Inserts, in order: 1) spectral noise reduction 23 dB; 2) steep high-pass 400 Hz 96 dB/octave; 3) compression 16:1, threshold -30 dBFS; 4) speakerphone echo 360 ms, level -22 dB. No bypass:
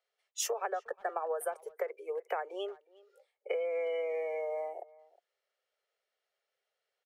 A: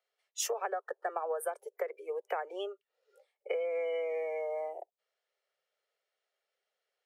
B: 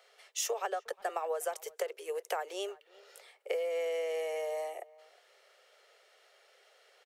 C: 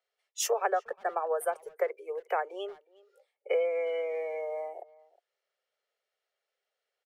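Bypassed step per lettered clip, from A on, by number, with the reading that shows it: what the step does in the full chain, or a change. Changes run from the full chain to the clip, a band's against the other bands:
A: 4, echo-to-direct -26.5 dB to none; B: 1, 4 kHz band +3.0 dB; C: 3, mean gain reduction 2.5 dB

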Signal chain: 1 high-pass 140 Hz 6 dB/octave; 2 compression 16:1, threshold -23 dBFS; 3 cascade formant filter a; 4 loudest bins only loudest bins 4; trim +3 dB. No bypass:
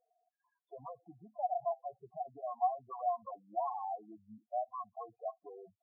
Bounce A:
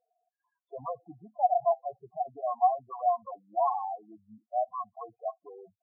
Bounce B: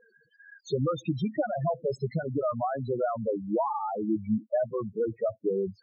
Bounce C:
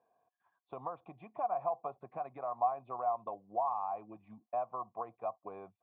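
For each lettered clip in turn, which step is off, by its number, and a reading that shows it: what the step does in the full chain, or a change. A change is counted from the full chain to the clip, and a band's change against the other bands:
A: 2, mean gain reduction 5.0 dB; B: 3, crest factor change -5.5 dB; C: 4, momentary loudness spread change -2 LU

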